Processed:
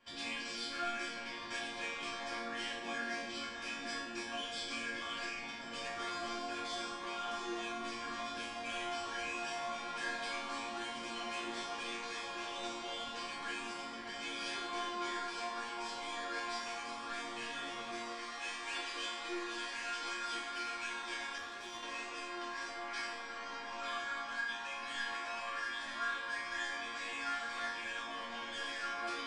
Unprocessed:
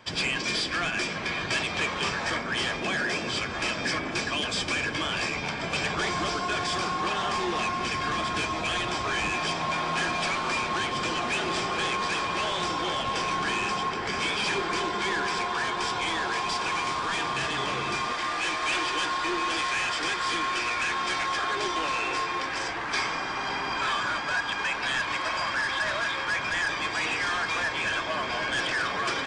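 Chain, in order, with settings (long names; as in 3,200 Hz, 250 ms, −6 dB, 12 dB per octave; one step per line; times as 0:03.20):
resonators tuned to a chord A#3 minor, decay 0.75 s
0:21.38–0:21.83: tube saturation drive 44 dB, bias 0.7
level +9.5 dB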